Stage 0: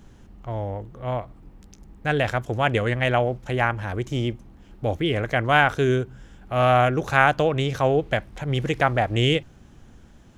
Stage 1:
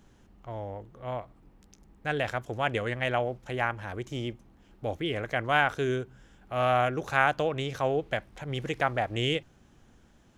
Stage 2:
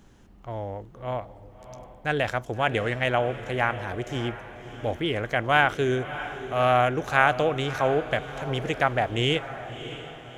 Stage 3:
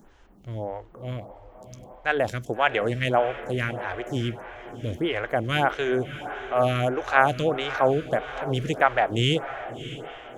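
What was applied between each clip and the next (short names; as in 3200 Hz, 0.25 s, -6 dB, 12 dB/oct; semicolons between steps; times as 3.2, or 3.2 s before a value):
low shelf 210 Hz -6 dB; gain -6 dB
diffused feedback echo 0.632 s, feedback 46%, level -12.5 dB; gain +4 dB
photocell phaser 1.6 Hz; gain +4 dB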